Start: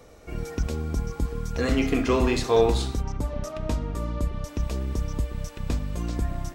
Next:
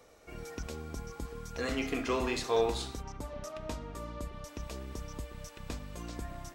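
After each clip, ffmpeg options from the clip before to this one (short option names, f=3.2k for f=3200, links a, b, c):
-af "lowshelf=f=310:g=-10,volume=-5.5dB"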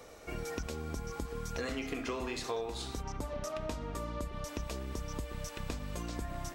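-af "acompressor=threshold=-41dB:ratio=8,volume=7dB"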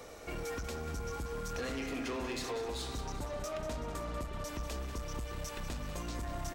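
-af "asoftclip=type=tanh:threshold=-37dB,aecho=1:1:190|380|570|760|950|1140|1330:0.282|0.163|0.0948|0.055|0.0319|0.0185|0.0107,volume=3dB"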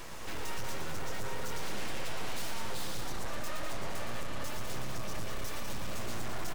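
-af "aeval=exprs='abs(val(0))':c=same,aeval=exprs='(tanh(50.1*val(0)+0.6)-tanh(0.6))/50.1':c=same,aecho=1:1:116.6|207:0.501|0.355,volume=11.5dB"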